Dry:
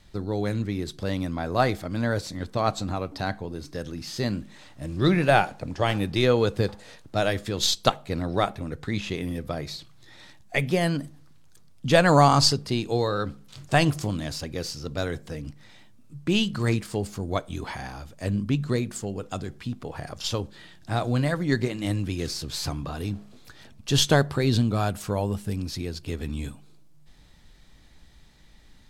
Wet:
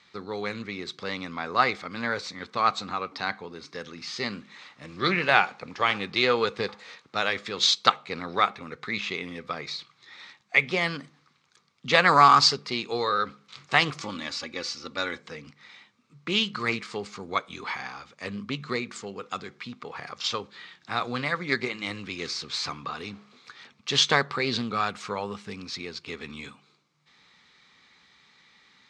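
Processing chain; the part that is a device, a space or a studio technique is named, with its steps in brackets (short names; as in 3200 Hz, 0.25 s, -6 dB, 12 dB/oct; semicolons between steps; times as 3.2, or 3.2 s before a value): full-range speaker at full volume (Doppler distortion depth 0.15 ms; speaker cabinet 280–6500 Hz, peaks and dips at 310 Hz -9 dB, 630 Hz -10 dB, 1200 Hz +9 dB, 2200 Hz +9 dB, 3900 Hz +4 dB); 14.01–15.2 comb 3.5 ms, depth 56%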